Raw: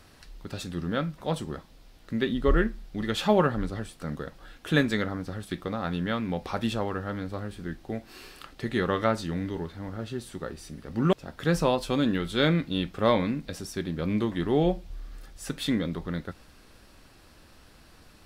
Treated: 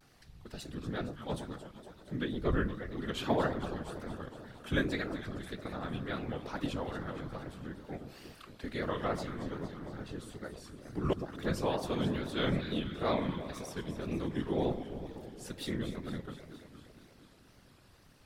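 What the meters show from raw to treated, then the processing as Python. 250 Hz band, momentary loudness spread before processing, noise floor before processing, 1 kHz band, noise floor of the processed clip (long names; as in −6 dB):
−8.0 dB, 14 LU, −55 dBFS, −7.5 dB, −60 dBFS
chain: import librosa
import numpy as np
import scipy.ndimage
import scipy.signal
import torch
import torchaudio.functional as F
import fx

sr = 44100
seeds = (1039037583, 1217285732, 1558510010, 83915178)

y = fx.echo_alternate(x, sr, ms=116, hz=960.0, feedback_pct=81, wet_db=-9.0)
y = fx.whisperise(y, sr, seeds[0])
y = fx.wow_flutter(y, sr, seeds[1], rate_hz=2.1, depth_cents=110.0)
y = y * librosa.db_to_amplitude(-8.5)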